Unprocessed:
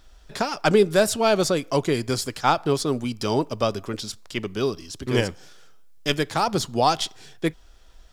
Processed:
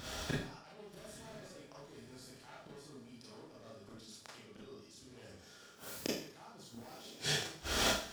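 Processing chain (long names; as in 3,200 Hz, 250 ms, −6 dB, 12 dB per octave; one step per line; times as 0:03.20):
wavefolder on the positive side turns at −15.5 dBFS
camcorder AGC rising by 41 dB per second
high-pass filter 70 Hz 24 dB per octave
reversed playback
downward compressor 8 to 1, threshold −33 dBFS, peak gain reduction 25 dB
reversed playback
pitch vibrato 2.3 Hz 17 cents
gate with flip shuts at −33 dBFS, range −34 dB
on a send: feedback delay with all-pass diffusion 1,021 ms, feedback 54%, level −14.5 dB
on the sum: four-comb reverb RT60 0.51 s, combs from 27 ms, DRR −5.5 dB
level +9 dB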